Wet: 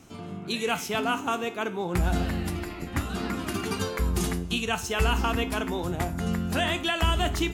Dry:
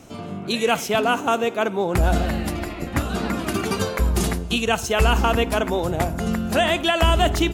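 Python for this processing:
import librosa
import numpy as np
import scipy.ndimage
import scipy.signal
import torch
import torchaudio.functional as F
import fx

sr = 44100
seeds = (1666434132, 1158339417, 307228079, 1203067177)

y = fx.peak_eq(x, sr, hz=580.0, db=-7.0, octaves=0.69)
y = fx.comb_fb(y, sr, f0_hz=88.0, decay_s=0.35, harmonics='all', damping=0.0, mix_pct=60)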